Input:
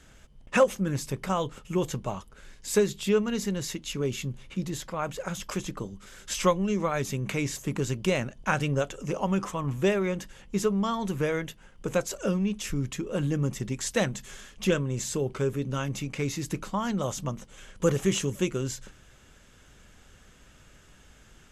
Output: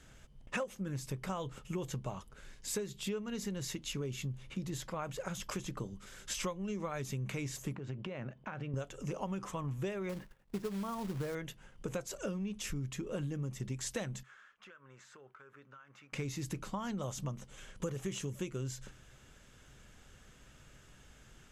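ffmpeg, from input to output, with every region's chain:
ffmpeg -i in.wav -filter_complex "[0:a]asettb=1/sr,asplit=3[link_01][link_02][link_03];[link_01]atrim=end=7.754[link_04];[link_02]atrim=start=7.75:end=8.74,asetpts=PTS-STARTPTS,afade=type=in:duration=0.004:curve=qsin,afade=type=out:start_time=0.986:duration=0.004:curve=qsin,highpass=110,lowpass=2300,acompressor=threshold=-33dB:ratio=12:attack=3.2:release=140:knee=1:detection=peak[link_05];[link_03]atrim=start=8.736[link_06];[link_04][link_05]acrossfade=duration=0.004:curve1=hsin:curve2=qsin[link_07];[link_07][link_06]acrossfade=duration=0.004:curve1=qsin:curve2=hsin,asettb=1/sr,asplit=3[link_08][link_09][link_10];[link_08]atrim=end=10.094[link_11];[link_09]atrim=start=10.09:end=11.35,asetpts=PTS-STARTPTS,afade=type=in:duration=0.004:curve=qsin,afade=type=out:start_time=1.256:duration=0.004:curve=qsin,agate=range=-33dB:threshold=-40dB:ratio=3:release=100:detection=peak,lowpass=1700,acrusher=bits=3:mode=log:mix=0:aa=0.000001[link_12];[link_10]atrim=start=11.346[link_13];[link_11][link_12]acrossfade=duration=0.004:curve1=hsin:curve2=qsin[link_14];[link_14][link_13]acrossfade=duration=0.004:curve1=qsin:curve2=hsin,asettb=1/sr,asplit=3[link_15][link_16][link_17];[link_15]atrim=end=14.234[link_18];[link_16]atrim=start=14.23:end=16.13,asetpts=PTS-STARTPTS,afade=type=in:duration=0.004:curve=qsin,afade=type=out:start_time=1.896:duration=0.004:curve=qsin,bandpass=frequency=1400:width_type=q:width=3.4,acompressor=threshold=-47dB:ratio=20:attack=3.2:release=140:knee=1:detection=peak[link_19];[link_17]atrim=start=16.126[link_20];[link_18][link_19]acrossfade=duration=0.004:curve1=hsin:curve2=qsin[link_21];[link_21][link_20]acrossfade=duration=0.004:curve1=qsin:curve2=hsin,equalizer=frequency=130:width_type=o:width=0.2:gain=6.5,acompressor=threshold=-31dB:ratio=6,volume=-4dB" out.wav

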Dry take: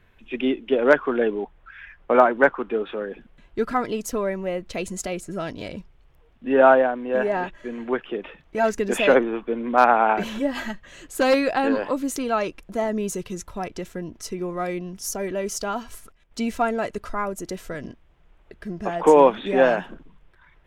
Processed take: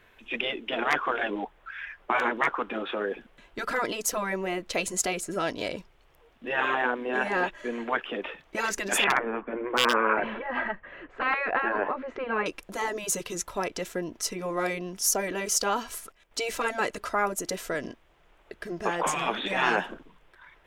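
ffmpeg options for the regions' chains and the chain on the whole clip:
ffmpeg -i in.wav -filter_complex "[0:a]asettb=1/sr,asplit=3[link_01][link_02][link_03];[link_01]atrim=end=9.044[link_04];[link_02]atrim=start=9.04:end=12.46,asetpts=PTS-STARTPTS,afade=type=in:duration=0.004:curve=qsin,afade=type=out:start_time=3.416:duration=0.004:curve=qsin,lowpass=frequency=2100:width=0.5412,lowpass=frequency=2100:width=1.3066,aeval=exprs='0.473*(abs(mod(val(0)/0.473+3,4)-2)-1)':channel_layout=same[link_05];[link_03]atrim=start=12.456[link_06];[link_04][link_05]acrossfade=duration=0.004:curve1=hsin:curve2=qsin[link_07];[link_07][link_06]acrossfade=duration=0.004:curve1=qsin:curve2=hsin,afftfilt=real='re*lt(hypot(re,im),0.316)':imag='im*lt(hypot(re,im),0.316)':win_size=1024:overlap=0.75,bass=frequency=250:gain=-12,treble=frequency=4000:gain=2,volume=4dB" out.wav

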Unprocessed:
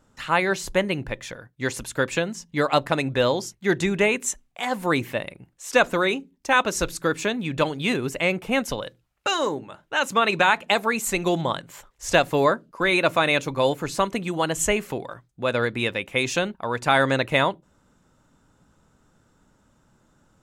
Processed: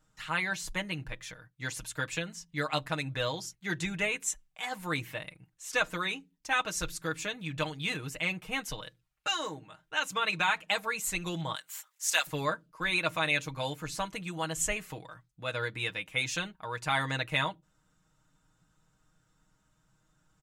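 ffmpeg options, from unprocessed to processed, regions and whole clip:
ffmpeg -i in.wav -filter_complex "[0:a]asettb=1/sr,asplit=3[link_01][link_02][link_03];[link_01]atrim=end=11.554[link_04];[link_02]atrim=start=11.55:end=12.27,asetpts=PTS-STARTPTS,afade=type=in:duration=0.004:curve=qsin,afade=type=out:start_time=0.716:duration=0.004:curve=qsin,highpass=780,aemphasis=mode=production:type=50kf[link_05];[link_03]atrim=start=12.266[link_06];[link_04][link_05]acrossfade=duration=0.004:curve1=hsin:curve2=qsin[link_07];[link_07][link_06]acrossfade=duration=0.004:curve1=qsin:curve2=hsin,equalizer=frequency=400:width=0.52:gain=-9.5,aecho=1:1:6.4:0.73,volume=-7.5dB" out.wav

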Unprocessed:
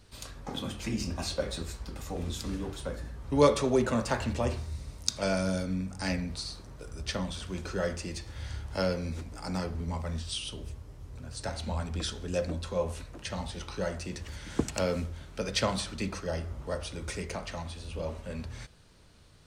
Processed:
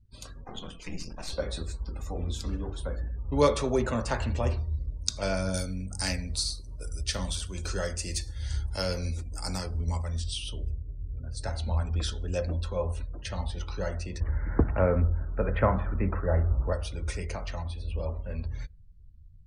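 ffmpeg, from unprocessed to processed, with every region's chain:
ffmpeg -i in.wav -filter_complex "[0:a]asettb=1/sr,asplit=3[link_01][link_02][link_03];[link_01]atrim=end=0.444[link_04];[link_02]atrim=start=0.44:end=1.33,asetpts=PTS-STARTPTS,afade=type=in:duration=0.004:curve=qsin,afade=type=out:start_time=0.886:duration=0.004:curve=qsin,lowshelf=frequency=210:gain=-8,afreqshift=-41,aeval=exprs='clip(val(0),-1,0.00501)':channel_layout=same[link_05];[link_03]atrim=start=1.326[link_06];[link_04][link_05]acrossfade=duration=0.004:curve1=hsin:curve2=qsin[link_07];[link_07][link_06]acrossfade=duration=0.004:curve1=qsin:curve2=hsin,asettb=1/sr,asplit=3[link_08][link_09][link_10];[link_08]atrim=end=5.544[link_11];[link_09]atrim=start=5.54:end=10.24,asetpts=PTS-STARTPTS,afade=type=in:duration=0.004:curve=qsin,afade=type=out:start_time=4.696:duration=0.004:curve=qsin,aemphasis=mode=production:type=75kf,tremolo=f=2.3:d=0.3[link_12];[link_10]atrim=start=10.236[link_13];[link_11][link_12]acrossfade=duration=0.004:curve1=hsin:curve2=qsin[link_14];[link_14][link_13]acrossfade=duration=0.004:curve1=qsin:curve2=hsin,asettb=1/sr,asplit=3[link_15][link_16][link_17];[link_15]atrim=end=14.204[link_18];[link_16]atrim=start=14.2:end=16.73,asetpts=PTS-STARTPTS,afade=type=in:duration=0.004:curve=qsin,afade=type=out:start_time=2.526:duration=0.004:curve=qsin,lowpass=frequency=1800:width=0.5412,lowpass=frequency=1800:width=1.3066,acontrast=38[link_19];[link_17]atrim=start=16.726[link_20];[link_18][link_19]acrossfade=duration=0.004:curve1=hsin:curve2=qsin[link_21];[link_21][link_20]acrossfade=duration=0.004:curve1=qsin:curve2=hsin,afftdn=noise_reduction=32:noise_floor=-49,asubboost=boost=4.5:cutoff=80" out.wav

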